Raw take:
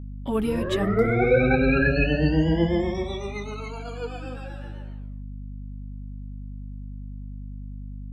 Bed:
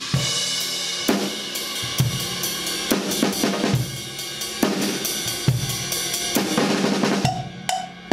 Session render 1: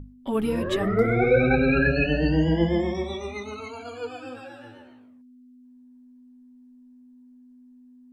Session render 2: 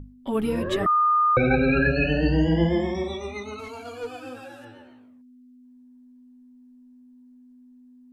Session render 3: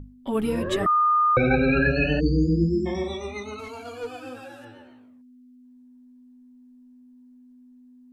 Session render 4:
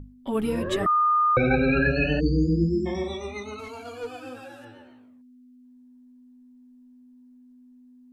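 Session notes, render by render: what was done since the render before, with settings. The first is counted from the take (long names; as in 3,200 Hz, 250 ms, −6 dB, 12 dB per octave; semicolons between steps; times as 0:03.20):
mains-hum notches 50/100/150/200 Hz
0:00.86–0:01.37: beep over 1,220 Hz −16.5 dBFS; 0:01.98–0:03.08: flutter between parallel walls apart 8.3 metres, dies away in 0.3 s; 0:03.59–0:04.65: linear delta modulator 64 kbit/s, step −51 dBFS
0:02.20–0:02.86: time-frequency box erased 490–4,400 Hz; dynamic equaliser 8,000 Hz, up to +5 dB, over −51 dBFS, Q 1.3
level −1 dB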